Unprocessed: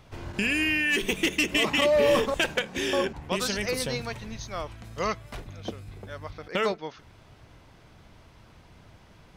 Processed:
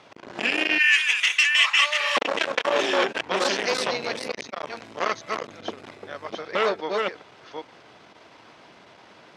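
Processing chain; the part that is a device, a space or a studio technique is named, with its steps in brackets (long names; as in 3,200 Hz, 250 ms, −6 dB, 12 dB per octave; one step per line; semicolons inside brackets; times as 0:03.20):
delay that plays each chunk backwards 401 ms, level −4 dB
0:00.78–0:02.17: Chebyshev high-pass filter 1,200 Hz, order 3
public-address speaker with an overloaded transformer (saturating transformer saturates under 1,900 Hz; band-pass filter 330–5,800 Hz)
level +7.5 dB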